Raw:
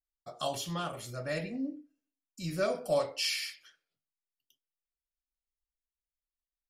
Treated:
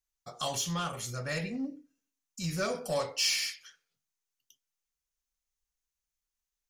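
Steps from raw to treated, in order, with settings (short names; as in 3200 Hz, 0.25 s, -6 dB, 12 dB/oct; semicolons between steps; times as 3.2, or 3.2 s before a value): thirty-one-band EQ 315 Hz -10 dB, 630 Hz -9 dB, 6300 Hz +9 dB; in parallel at -4.5 dB: hard clip -35.5 dBFS, distortion -7 dB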